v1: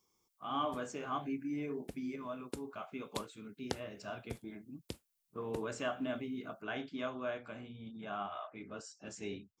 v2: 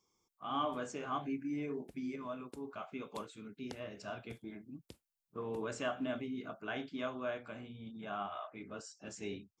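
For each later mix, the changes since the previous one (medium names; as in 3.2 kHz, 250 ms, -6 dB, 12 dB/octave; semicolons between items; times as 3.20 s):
background -10.0 dB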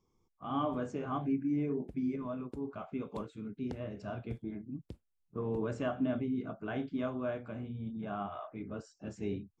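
master: add tilt EQ -3.5 dB/octave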